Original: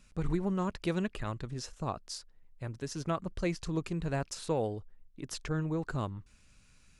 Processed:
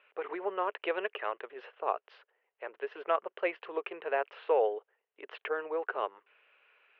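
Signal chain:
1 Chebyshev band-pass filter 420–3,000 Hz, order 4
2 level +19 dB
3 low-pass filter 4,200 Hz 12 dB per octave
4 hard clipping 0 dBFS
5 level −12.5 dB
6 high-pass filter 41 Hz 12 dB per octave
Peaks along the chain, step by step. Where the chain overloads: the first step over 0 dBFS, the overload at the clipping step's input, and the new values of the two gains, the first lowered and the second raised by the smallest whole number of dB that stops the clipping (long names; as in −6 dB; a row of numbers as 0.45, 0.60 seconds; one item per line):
−21.0, −2.0, −2.0, −2.0, −14.5, −14.5 dBFS
no step passes full scale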